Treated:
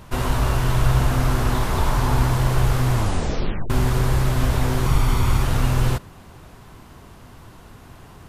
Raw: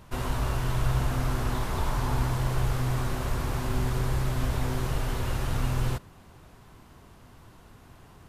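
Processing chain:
0:02.92: tape stop 0.78 s
0:04.86–0:05.43: comb filter 0.9 ms, depth 50%
level +8 dB

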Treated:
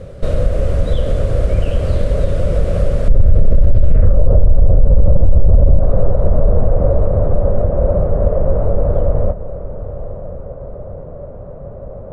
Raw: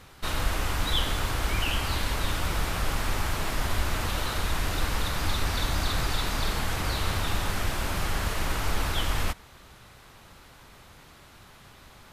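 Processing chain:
downward compressor 2.5 to 1, threshold −33 dBFS, peak gain reduction 9.5 dB
0:03.08–0:05.79: spectral tilt −3.5 dB per octave
low-pass filter sweep 9,100 Hz → 890 Hz, 0:03.61–0:04.21
drawn EQ curve 170 Hz 0 dB, 320 Hz −9 dB, 560 Hz +9 dB, 850 Hz −23 dB, 1,200 Hz −18 dB, 10,000 Hz −29 dB
feedback delay with all-pass diffusion 994 ms, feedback 41%, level −14 dB
boost into a limiter +22 dB
level −1 dB

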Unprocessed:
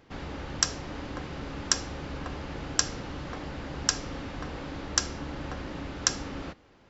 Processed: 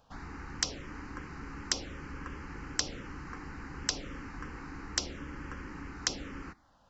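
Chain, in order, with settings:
phaser swept by the level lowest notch 340 Hz, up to 1,700 Hz, full sweep at −24.5 dBFS
parametric band 110 Hz −6.5 dB 1.7 octaves
level −1.5 dB

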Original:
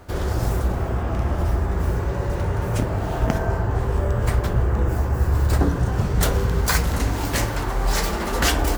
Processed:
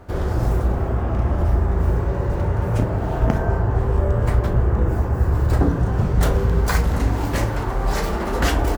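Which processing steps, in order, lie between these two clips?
high-shelf EQ 2,200 Hz −10 dB
double-tracking delay 36 ms −11.5 dB
level +2 dB

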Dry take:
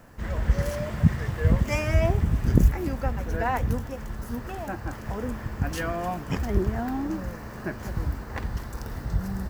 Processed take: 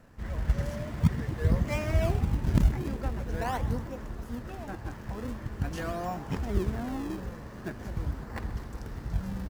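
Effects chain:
high-shelf EQ 12,000 Hz −10.5 dB
in parallel at −6.5 dB: sample-and-hold swept by an LFO 35×, swing 160% 0.45 Hz
on the sum: echo with shifted repeats 128 ms, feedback 62%, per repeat +79 Hz, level −16 dB
level −7.5 dB

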